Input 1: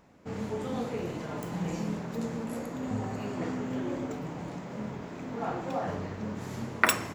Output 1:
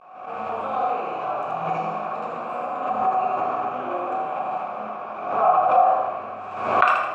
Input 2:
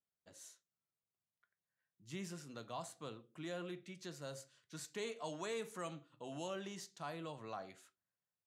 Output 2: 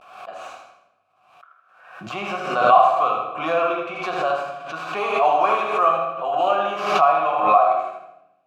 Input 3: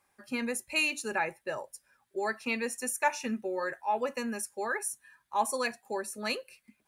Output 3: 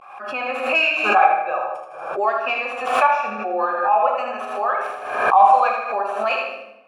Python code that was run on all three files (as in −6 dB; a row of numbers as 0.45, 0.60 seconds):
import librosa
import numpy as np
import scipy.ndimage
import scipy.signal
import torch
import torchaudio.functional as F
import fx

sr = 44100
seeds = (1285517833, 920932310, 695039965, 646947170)

p1 = fx.tracing_dist(x, sr, depth_ms=0.088)
p2 = fx.peak_eq(p1, sr, hz=1300.0, db=13.5, octaves=1.7)
p3 = fx.rider(p2, sr, range_db=5, speed_s=2.0)
p4 = fx.vibrato(p3, sr, rate_hz=0.51, depth_cents=72.0)
p5 = fx.vowel_filter(p4, sr, vowel='a')
p6 = p5 + fx.echo_feedback(p5, sr, ms=79, feedback_pct=41, wet_db=-5.0, dry=0)
p7 = fx.room_shoebox(p6, sr, seeds[0], volume_m3=270.0, walls='mixed', distance_m=0.99)
p8 = fx.pre_swell(p7, sr, db_per_s=62.0)
y = p8 * 10.0 ** (-2 / 20.0) / np.max(np.abs(p8))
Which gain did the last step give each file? +7.0, +25.0, +12.0 decibels